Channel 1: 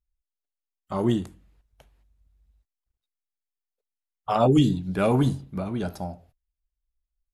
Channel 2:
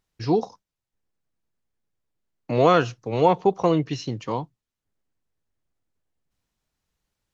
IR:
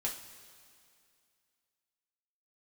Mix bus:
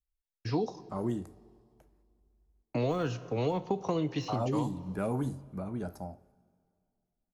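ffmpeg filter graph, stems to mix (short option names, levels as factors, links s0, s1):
-filter_complex "[0:a]equalizer=f=3300:w=1.3:g=-12.5,volume=0.376,asplit=2[s0][s1];[s1]volume=0.168[s2];[1:a]deesser=0.95,agate=range=0.0224:threshold=0.00631:ratio=3:detection=peak,acrossover=split=360[s3][s4];[s4]acompressor=threshold=0.0891:ratio=3[s5];[s3][s5]amix=inputs=2:normalize=0,adelay=250,volume=0.631,asplit=2[s6][s7];[s7]volume=0.299[s8];[2:a]atrim=start_sample=2205[s9];[s2][s8]amix=inputs=2:normalize=0[s10];[s10][s9]afir=irnorm=-1:irlink=0[s11];[s0][s6][s11]amix=inputs=3:normalize=0,acrossover=split=310|3700[s12][s13][s14];[s12]acompressor=threshold=0.0251:ratio=4[s15];[s13]acompressor=threshold=0.0251:ratio=4[s16];[s14]acompressor=threshold=0.00316:ratio=4[s17];[s15][s16][s17]amix=inputs=3:normalize=0"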